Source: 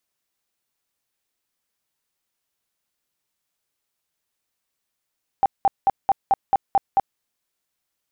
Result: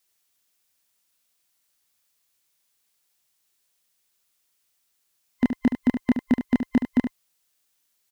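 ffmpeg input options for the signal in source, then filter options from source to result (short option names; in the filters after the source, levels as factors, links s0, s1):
-f lavfi -i "aevalsrc='0.237*sin(2*PI*787*mod(t,0.22))*lt(mod(t,0.22),22/787)':d=1.76:s=44100"
-filter_complex "[0:a]afftfilt=real='real(if(between(b,1,1008),(2*floor((b-1)/48)+1)*48-b,b),0)':imag='imag(if(between(b,1,1008),(2*floor((b-1)/48)+1)*48-b,b),0)*if(between(b,1,1008),-1,1)':win_size=2048:overlap=0.75,highshelf=f=2300:g=8.5,asplit=2[s0][s1];[s1]aecho=0:1:72:0.376[s2];[s0][s2]amix=inputs=2:normalize=0"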